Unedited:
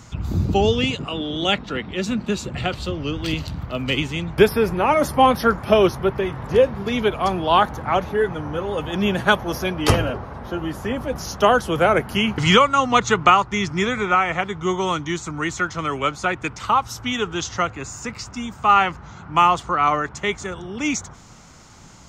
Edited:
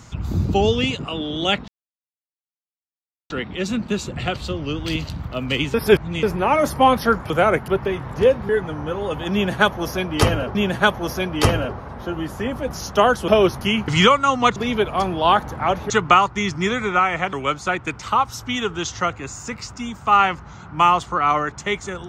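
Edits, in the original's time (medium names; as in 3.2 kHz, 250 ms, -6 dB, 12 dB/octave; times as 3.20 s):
1.68 s: insert silence 1.62 s
4.12–4.61 s: reverse
5.68–6.01 s: swap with 11.73–12.11 s
6.82–8.16 s: move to 13.06 s
9.00–10.22 s: loop, 2 plays
14.49–15.90 s: delete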